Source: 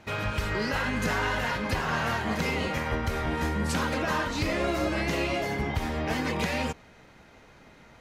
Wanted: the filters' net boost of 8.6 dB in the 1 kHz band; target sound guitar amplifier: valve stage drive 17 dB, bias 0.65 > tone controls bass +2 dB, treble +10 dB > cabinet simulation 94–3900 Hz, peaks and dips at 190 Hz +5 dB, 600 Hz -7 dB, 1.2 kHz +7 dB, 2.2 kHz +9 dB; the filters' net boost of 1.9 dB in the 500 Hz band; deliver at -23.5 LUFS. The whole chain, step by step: peaking EQ 500 Hz +3.5 dB; peaking EQ 1 kHz +6.5 dB; valve stage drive 17 dB, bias 0.65; tone controls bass +2 dB, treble +10 dB; cabinet simulation 94–3900 Hz, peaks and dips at 190 Hz +5 dB, 600 Hz -7 dB, 1.2 kHz +7 dB, 2.2 kHz +9 dB; trim +2.5 dB

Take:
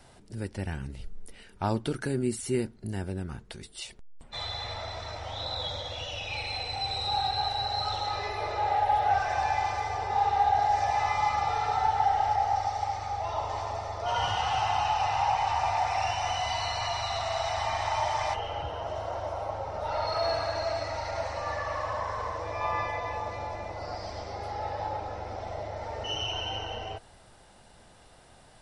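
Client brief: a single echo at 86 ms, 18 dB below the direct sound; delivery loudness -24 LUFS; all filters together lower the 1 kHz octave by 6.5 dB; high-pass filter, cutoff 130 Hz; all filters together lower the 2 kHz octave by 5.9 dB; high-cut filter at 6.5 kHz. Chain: high-pass 130 Hz; low-pass 6.5 kHz; peaking EQ 1 kHz -8 dB; peaking EQ 2 kHz -5 dB; delay 86 ms -18 dB; trim +11 dB

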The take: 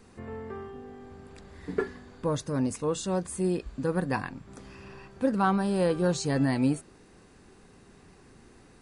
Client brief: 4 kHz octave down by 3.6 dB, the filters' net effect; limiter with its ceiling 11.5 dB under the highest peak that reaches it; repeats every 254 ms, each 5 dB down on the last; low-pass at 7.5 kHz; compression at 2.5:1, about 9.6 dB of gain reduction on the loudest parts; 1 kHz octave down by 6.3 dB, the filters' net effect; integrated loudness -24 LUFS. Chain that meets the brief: low-pass 7.5 kHz; peaking EQ 1 kHz -8.5 dB; peaking EQ 4 kHz -3.5 dB; compression 2.5:1, threshold -36 dBFS; peak limiter -35 dBFS; feedback delay 254 ms, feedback 56%, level -5 dB; trim +19.5 dB

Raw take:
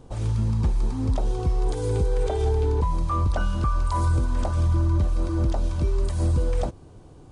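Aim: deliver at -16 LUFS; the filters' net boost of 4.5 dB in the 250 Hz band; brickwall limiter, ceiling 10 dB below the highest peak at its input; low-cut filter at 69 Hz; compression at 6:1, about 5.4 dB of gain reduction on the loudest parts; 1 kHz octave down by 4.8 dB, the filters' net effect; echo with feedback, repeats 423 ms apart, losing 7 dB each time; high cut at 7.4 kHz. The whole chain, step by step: high-pass 69 Hz; low-pass 7.4 kHz; peaking EQ 250 Hz +6.5 dB; peaking EQ 1 kHz -6 dB; compression 6:1, threshold -24 dBFS; peak limiter -26.5 dBFS; feedback delay 423 ms, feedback 45%, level -7 dB; trim +18 dB

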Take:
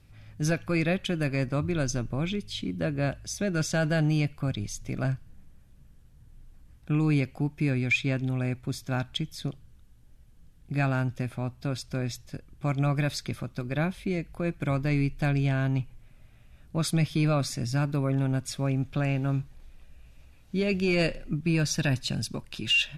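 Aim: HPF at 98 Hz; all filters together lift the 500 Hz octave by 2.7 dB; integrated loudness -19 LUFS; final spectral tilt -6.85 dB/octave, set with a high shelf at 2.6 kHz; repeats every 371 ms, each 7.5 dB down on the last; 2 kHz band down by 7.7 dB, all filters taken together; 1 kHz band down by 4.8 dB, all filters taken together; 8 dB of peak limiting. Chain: high-pass 98 Hz; peaking EQ 500 Hz +6.5 dB; peaking EQ 1 kHz -9 dB; peaking EQ 2 kHz -3.5 dB; treble shelf 2.6 kHz -9 dB; peak limiter -22.5 dBFS; feedback delay 371 ms, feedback 42%, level -7.5 dB; trim +13.5 dB

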